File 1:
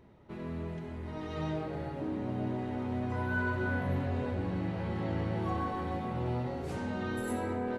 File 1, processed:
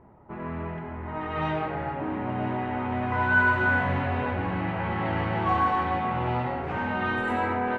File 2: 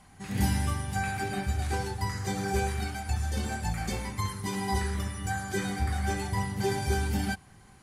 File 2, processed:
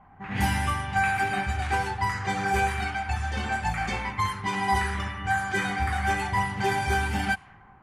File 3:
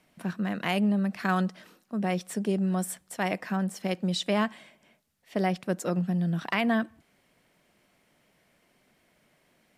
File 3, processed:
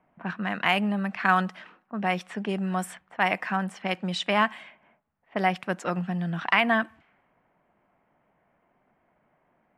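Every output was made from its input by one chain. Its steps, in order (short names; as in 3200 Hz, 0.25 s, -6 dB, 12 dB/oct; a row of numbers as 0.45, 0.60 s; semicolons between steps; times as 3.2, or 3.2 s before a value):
band shelf 1500 Hz +10 dB 2.4 oct; low-pass opened by the level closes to 850 Hz, open at -21.5 dBFS; match loudness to -27 LUFS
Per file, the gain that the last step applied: +4.0, -0.5, -2.0 dB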